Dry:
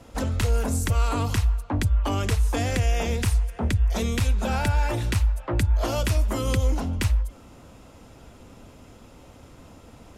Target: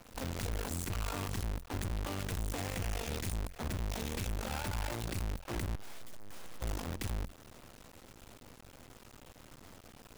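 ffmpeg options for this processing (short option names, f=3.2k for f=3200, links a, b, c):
-filter_complex "[0:a]asettb=1/sr,asplit=3[a][b][c];[a]atrim=end=5.754[d];[b]atrim=start=5.75:end=6.61,asetpts=PTS-STARTPTS,afade=t=in:d=0.004:c=qsin,afade=t=out:st=0.856:d=0.004:c=qsin,aeval=exprs='abs(val(0))':c=same[e];[c]atrim=start=6.606[f];[d][e]acrossfade=d=0.004:c1=hsin:c2=qsin[g];[g][f]acrossfade=d=0.004:c1=qsin:c2=hsin,acrusher=bits=5:dc=4:mix=0:aa=0.000001,aeval=exprs='(tanh(50.1*val(0)+0.6)-tanh(0.6))/50.1':c=same"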